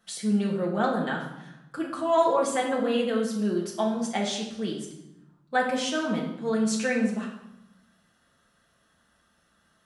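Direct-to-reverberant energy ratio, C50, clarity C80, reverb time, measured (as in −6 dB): −3.5 dB, 5.5 dB, 8.5 dB, 0.90 s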